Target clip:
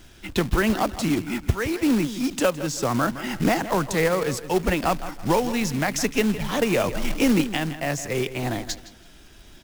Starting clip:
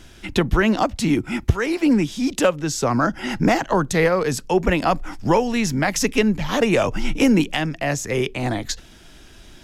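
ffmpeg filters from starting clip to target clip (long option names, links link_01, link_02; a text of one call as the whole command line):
ffmpeg -i in.wav -filter_complex "[0:a]asplit=2[link_01][link_02];[link_02]adelay=163,lowpass=frequency=4000:poles=1,volume=-13dB,asplit=2[link_03][link_04];[link_04]adelay=163,lowpass=frequency=4000:poles=1,volume=0.31,asplit=2[link_05][link_06];[link_06]adelay=163,lowpass=frequency=4000:poles=1,volume=0.31[link_07];[link_01][link_03][link_05][link_07]amix=inputs=4:normalize=0,acrusher=bits=3:mode=log:mix=0:aa=0.000001,volume=-4dB" out.wav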